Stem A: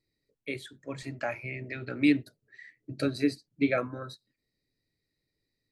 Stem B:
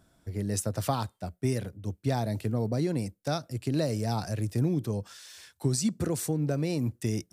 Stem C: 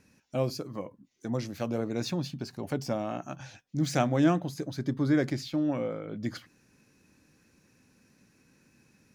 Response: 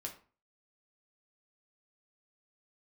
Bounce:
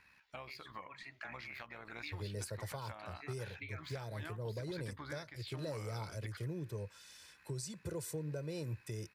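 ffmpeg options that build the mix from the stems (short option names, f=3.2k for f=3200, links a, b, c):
-filter_complex "[0:a]volume=-13.5dB[a];[1:a]aecho=1:1:2:0.76,adelay=1850,volume=-11dB[b];[2:a]equalizer=f=5.9k:t=o:w=0.27:g=-9.5,tremolo=f=67:d=0.462,volume=-3dB[c];[a][c]amix=inputs=2:normalize=0,equalizer=f=125:t=o:w=1:g=-7,equalizer=f=250:t=o:w=1:g=-11,equalizer=f=500:t=o:w=1:g=-8,equalizer=f=1k:t=o:w=1:g=9,equalizer=f=2k:t=o:w=1:g=10,equalizer=f=4k:t=o:w=1:g=6,equalizer=f=8k:t=o:w=1:g=-6,acompressor=threshold=-44dB:ratio=6,volume=0dB[d];[b][d]amix=inputs=2:normalize=0,alimiter=level_in=8dB:limit=-24dB:level=0:latency=1:release=367,volume=-8dB"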